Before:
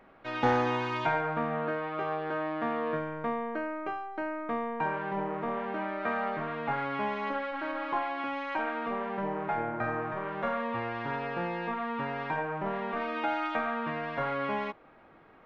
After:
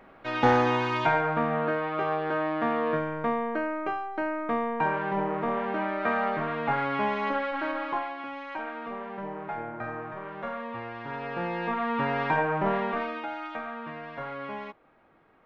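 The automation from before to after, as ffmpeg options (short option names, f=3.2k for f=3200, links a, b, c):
-af "volume=15dB,afade=t=out:st=7.63:d=0.55:silence=0.398107,afade=t=in:st=11.05:d=1.11:silence=0.298538,afade=t=out:st=12.72:d=0.53:silence=0.251189"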